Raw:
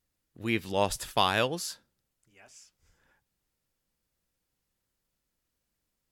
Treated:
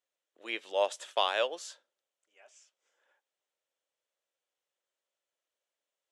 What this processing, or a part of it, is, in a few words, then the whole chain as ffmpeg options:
phone speaker on a table: -af "highpass=f=420:w=0.5412,highpass=f=420:w=1.3066,equalizer=f=590:t=q:w=4:g=7,equalizer=f=3.2k:t=q:w=4:g=5,equalizer=f=4.8k:t=q:w=4:g=-7,lowpass=f=8.1k:w=0.5412,lowpass=f=8.1k:w=1.3066,volume=-5dB"

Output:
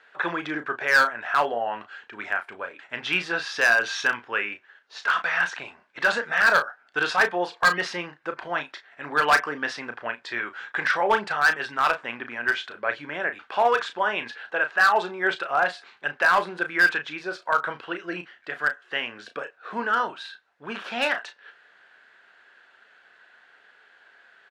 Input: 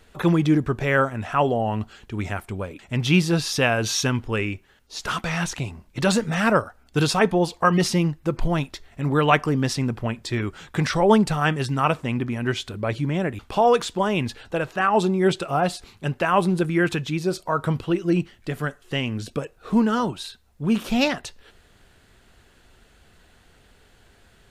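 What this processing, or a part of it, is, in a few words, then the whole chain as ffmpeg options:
megaphone: -filter_complex "[0:a]highpass=660,lowpass=3.2k,equalizer=f=1.6k:t=o:w=0.4:g=11,asoftclip=type=hard:threshold=-13dB,asplit=2[a][b];[b]adelay=34,volume=-9dB[c];[a][c]amix=inputs=2:normalize=0"

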